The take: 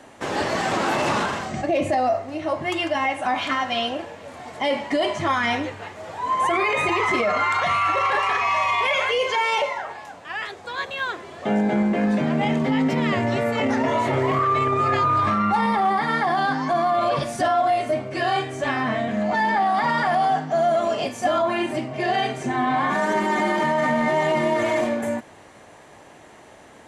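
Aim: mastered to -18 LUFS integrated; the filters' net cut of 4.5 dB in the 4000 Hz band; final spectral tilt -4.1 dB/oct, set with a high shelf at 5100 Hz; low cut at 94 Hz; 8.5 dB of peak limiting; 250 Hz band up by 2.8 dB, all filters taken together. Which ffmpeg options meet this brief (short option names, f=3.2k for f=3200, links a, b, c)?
-af "highpass=94,equalizer=f=250:t=o:g=3.5,equalizer=f=4k:t=o:g=-5,highshelf=f=5.1k:g=-4,volume=8.5dB,alimiter=limit=-10dB:level=0:latency=1"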